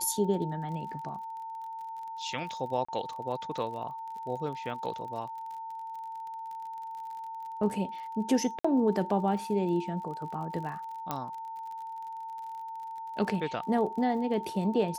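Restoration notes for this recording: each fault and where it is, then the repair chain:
surface crackle 39 per second −40 dBFS
whistle 900 Hz −37 dBFS
0:02.85–0:02.88: drop-out 35 ms
0:08.59–0:08.64: drop-out 55 ms
0:11.11: click −16 dBFS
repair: click removal
notch filter 900 Hz, Q 30
repair the gap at 0:02.85, 35 ms
repair the gap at 0:08.59, 55 ms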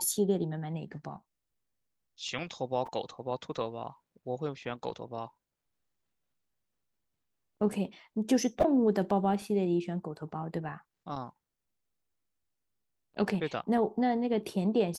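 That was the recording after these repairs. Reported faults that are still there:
none of them is left

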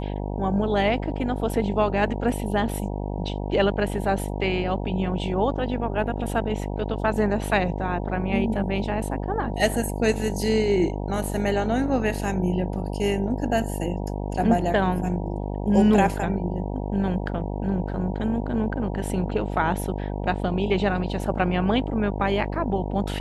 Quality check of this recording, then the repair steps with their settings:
mains buzz 50 Hz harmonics 19 −29 dBFS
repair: hum removal 50 Hz, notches 19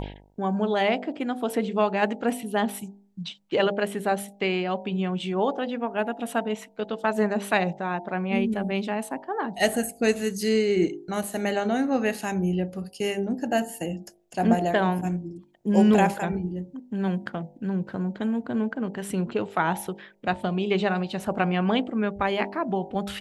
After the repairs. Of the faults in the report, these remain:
none of them is left

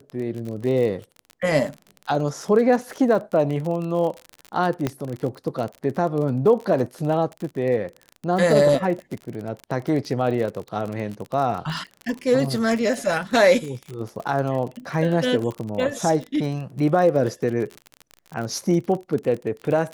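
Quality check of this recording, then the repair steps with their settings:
surface crackle 42 per second −28 dBFS
0:04.87: click −10 dBFS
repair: click removal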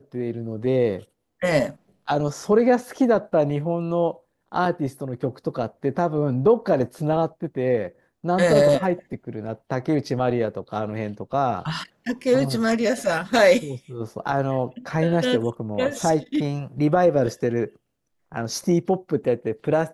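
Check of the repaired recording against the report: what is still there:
none of them is left

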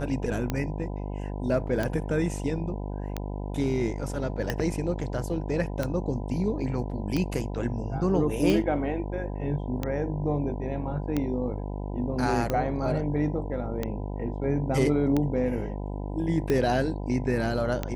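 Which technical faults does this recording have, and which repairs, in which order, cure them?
mains buzz 50 Hz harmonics 20 −33 dBFS
scratch tick 45 rpm −14 dBFS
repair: click removal
hum removal 50 Hz, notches 20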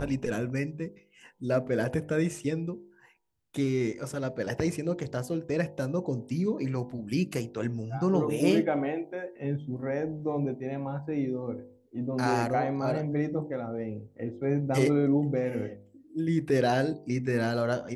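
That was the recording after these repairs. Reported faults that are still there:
none of them is left

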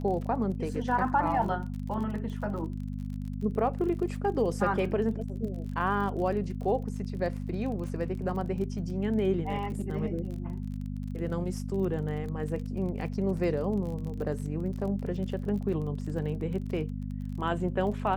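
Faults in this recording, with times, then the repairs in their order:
surface crackle 34 per second −37 dBFS
mains hum 50 Hz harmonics 5 −35 dBFS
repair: click removal
hum removal 50 Hz, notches 5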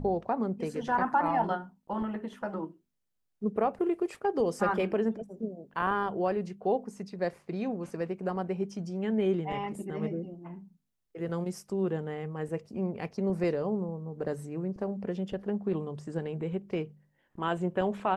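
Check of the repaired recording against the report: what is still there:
none of them is left

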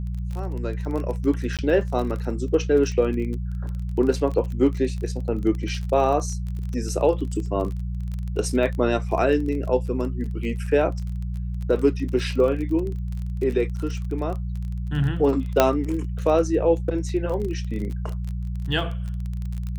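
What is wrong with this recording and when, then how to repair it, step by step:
surface crackle 28 per second −29 dBFS
mains hum 60 Hz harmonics 3 −28 dBFS
0:01.57–0:01.59: drop-out 17 ms
0:15.60: click −2 dBFS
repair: click removal
hum removal 60 Hz, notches 3
repair the gap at 0:01.57, 17 ms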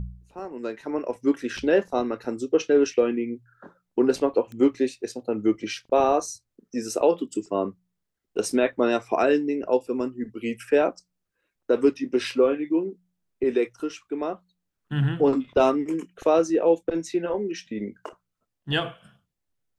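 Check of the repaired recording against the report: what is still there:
none of them is left

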